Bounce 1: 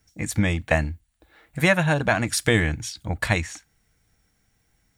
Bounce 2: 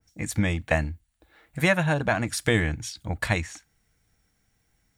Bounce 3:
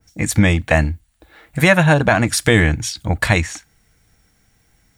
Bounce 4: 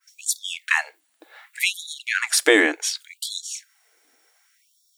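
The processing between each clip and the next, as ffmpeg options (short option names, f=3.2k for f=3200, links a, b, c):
-af "adynamicequalizer=threshold=0.0224:dfrequency=1700:dqfactor=0.7:tfrequency=1700:tqfactor=0.7:attack=5:release=100:ratio=0.375:range=2:mode=cutabove:tftype=highshelf,volume=-2.5dB"
-af "alimiter=level_in=12dB:limit=-1dB:release=50:level=0:latency=1,volume=-1dB"
-af "afftfilt=real='re*gte(b*sr/1024,250*pow(3400/250,0.5+0.5*sin(2*PI*0.67*pts/sr)))':imag='im*gte(b*sr/1024,250*pow(3400/250,0.5+0.5*sin(2*PI*0.67*pts/sr)))':win_size=1024:overlap=0.75"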